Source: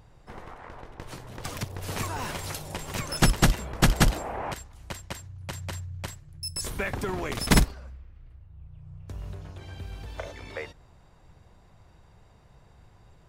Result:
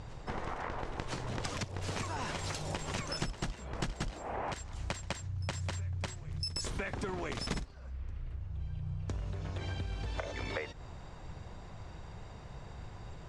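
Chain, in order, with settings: LPF 8000 Hz 24 dB/oct; compressor 16:1, threshold -42 dBFS, peak gain reduction 29 dB; reverse echo 1.007 s -20.5 dB; gain +8.5 dB

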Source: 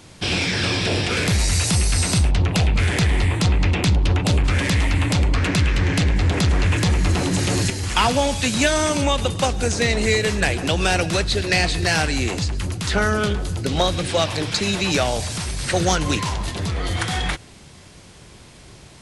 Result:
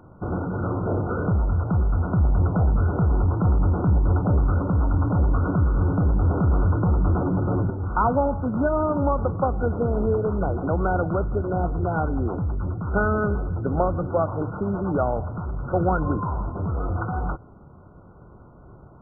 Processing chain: brick-wall FIR low-pass 1500 Hz; gain -1.5 dB

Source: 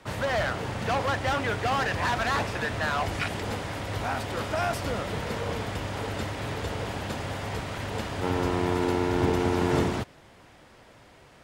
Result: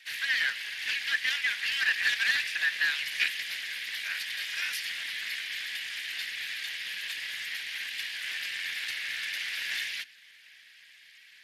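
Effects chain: steep high-pass 1600 Hz 96 dB/oct; gain +6.5 dB; Speex 24 kbps 32000 Hz

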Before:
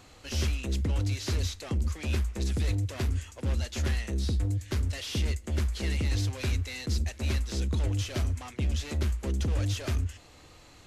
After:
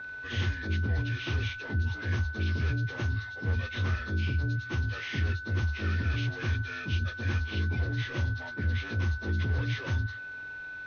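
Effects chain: inharmonic rescaling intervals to 82%; whine 1500 Hz -38 dBFS

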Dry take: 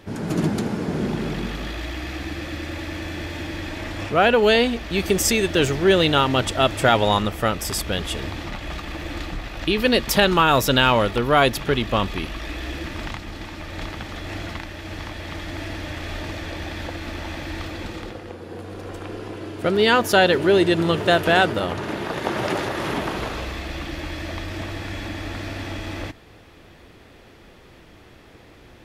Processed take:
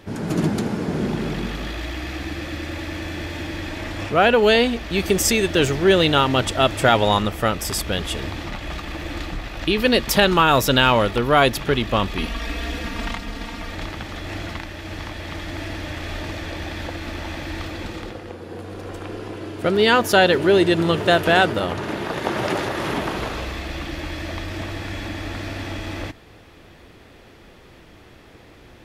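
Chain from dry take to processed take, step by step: 12.18–13.75 comb 4.3 ms, depth 89%; gain +1 dB

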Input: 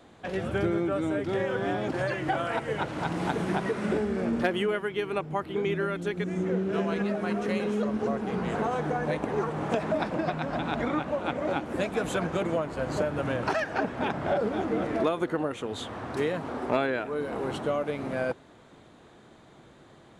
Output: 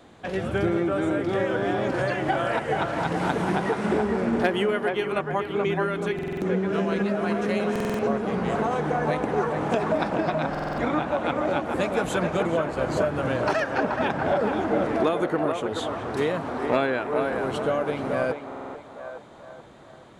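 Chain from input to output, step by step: on a send: narrowing echo 0.429 s, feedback 52%, band-pass 900 Hz, level -3 dB; on the sum: stuck buffer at 6.14/7.71/10.5/18.47, samples 2048, times 5; gain +3 dB

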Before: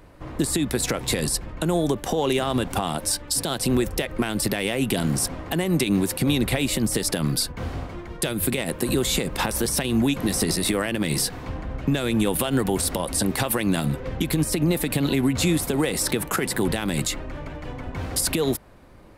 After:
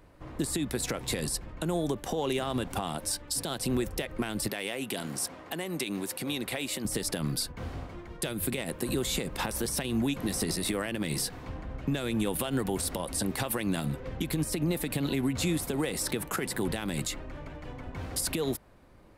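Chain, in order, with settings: 4.49–6.85 HPF 400 Hz 6 dB/oct; gain -7.5 dB

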